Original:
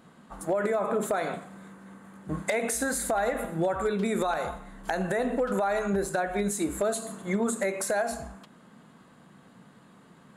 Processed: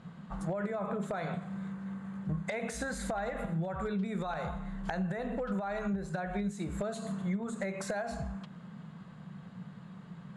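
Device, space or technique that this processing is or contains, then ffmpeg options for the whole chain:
jukebox: -af "lowpass=5.1k,lowshelf=f=220:t=q:w=3:g=6.5,acompressor=threshold=-33dB:ratio=4"

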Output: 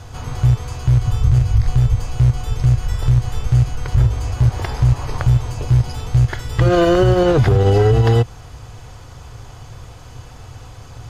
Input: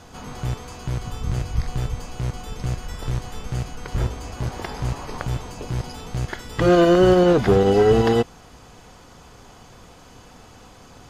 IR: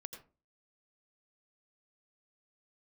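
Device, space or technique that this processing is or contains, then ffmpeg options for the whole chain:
car stereo with a boomy subwoofer: -af "lowshelf=f=150:t=q:w=3:g=7.5,alimiter=limit=-9.5dB:level=0:latency=1:release=88,volume=4dB"

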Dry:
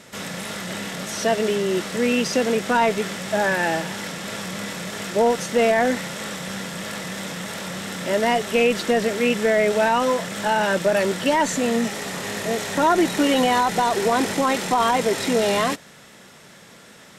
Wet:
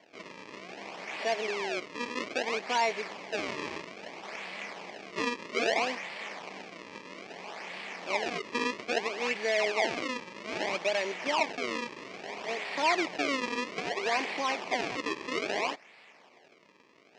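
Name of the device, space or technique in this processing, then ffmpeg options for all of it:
circuit-bent sampling toy: -af "acrusher=samples=34:mix=1:aa=0.000001:lfo=1:lforange=54.4:lforate=0.61,highpass=490,equalizer=f=530:t=q:w=4:g=-5,equalizer=f=1.4k:t=q:w=4:g=-9,equalizer=f=2.3k:t=q:w=4:g=7,equalizer=f=3.7k:t=q:w=4:g=-4,lowpass=f=5.7k:w=0.5412,lowpass=f=5.7k:w=1.3066,volume=-6.5dB"

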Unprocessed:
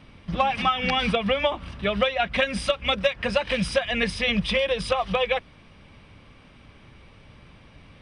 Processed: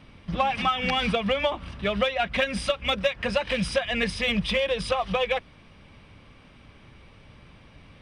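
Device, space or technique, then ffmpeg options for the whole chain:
parallel distortion: -filter_complex "[0:a]asplit=2[a][b];[b]asoftclip=type=hard:threshold=-23dB,volume=-11dB[c];[a][c]amix=inputs=2:normalize=0,volume=-3dB"

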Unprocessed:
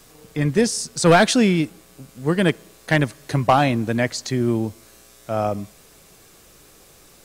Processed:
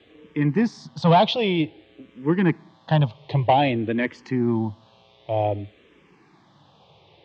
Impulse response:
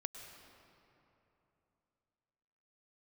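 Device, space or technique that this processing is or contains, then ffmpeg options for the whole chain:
barber-pole phaser into a guitar amplifier: -filter_complex "[0:a]asplit=2[a][b];[b]afreqshift=-0.53[c];[a][c]amix=inputs=2:normalize=1,asoftclip=type=tanh:threshold=-10dB,highpass=100,equalizer=f=100:t=q:w=4:g=7,equalizer=f=150:t=q:w=4:g=4,equalizer=f=320:t=q:w=4:g=4,equalizer=f=890:t=q:w=4:g=8,equalizer=f=1.4k:t=q:w=4:g=-8,equalizer=f=3.3k:t=q:w=4:g=6,lowpass=f=3.5k:w=0.5412,lowpass=f=3.5k:w=1.3066"

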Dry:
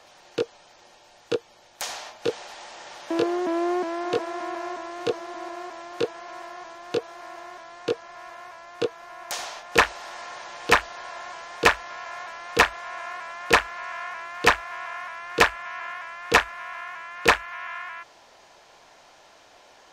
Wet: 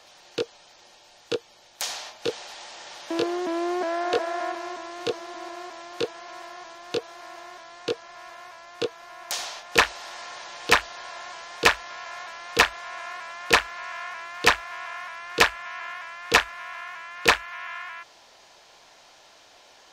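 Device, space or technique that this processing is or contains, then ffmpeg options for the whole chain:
presence and air boost: -filter_complex "[0:a]asettb=1/sr,asplit=3[a][b][c];[a]atrim=end=3.814[d];[b]atrim=start=3.81:end=4.52,asetpts=PTS-STARTPTS,afade=t=in:d=0.004:c=qsin,afade=t=out:st=0.706:d=0.004:c=qsin,equalizer=f=160:t=o:w=0.67:g=-11,equalizer=f=630:t=o:w=0.67:g=8,equalizer=f=1.6k:t=o:w=0.67:g=6[e];[c]atrim=start=4.516[f];[d][e]acrossfade=d=0.004:c1=hsin:c2=qsin[g];[g][f]acrossfade=d=0.004:c1=qsin:c2=hsin,equalizer=f=4.1k:t=o:w=1.6:g=5.5,highshelf=f=10k:g=6.5,volume=-2.5dB"

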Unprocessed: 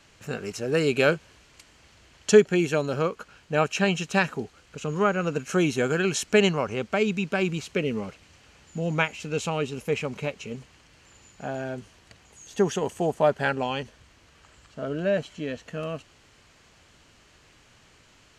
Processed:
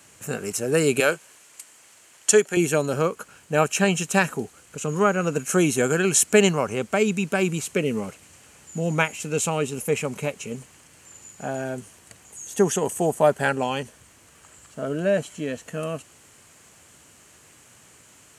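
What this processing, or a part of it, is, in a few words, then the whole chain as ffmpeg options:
budget condenser microphone: -filter_complex "[0:a]highpass=92,highshelf=f=6.5k:t=q:w=1.5:g=12.5,asettb=1/sr,asplit=3[a][b][c];[a]atrim=end=1.004[d];[b]atrim=start=1:end=2.57,asetpts=PTS-STARTPTS,afade=t=in:d=0.004:c=qsin,afade=t=out:st=1.566:d=0.004:c=qsin,highpass=f=610:p=1[e];[c]atrim=start=2.566[f];[d][e]acrossfade=d=0.004:c1=hsin:c2=qsin[g];[g][f]acrossfade=d=0.004:c1=qsin:c2=hsin,volume=3dB"

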